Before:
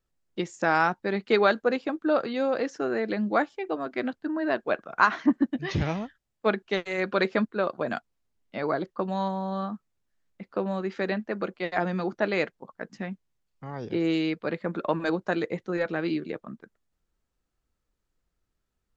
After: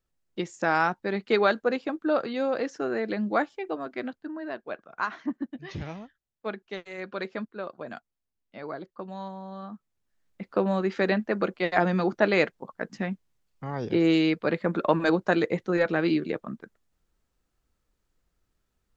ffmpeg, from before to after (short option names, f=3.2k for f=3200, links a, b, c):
-af "volume=12dB,afade=t=out:st=3.58:d=0.93:silence=0.398107,afade=t=in:st=9.62:d=0.87:silence=0.223872"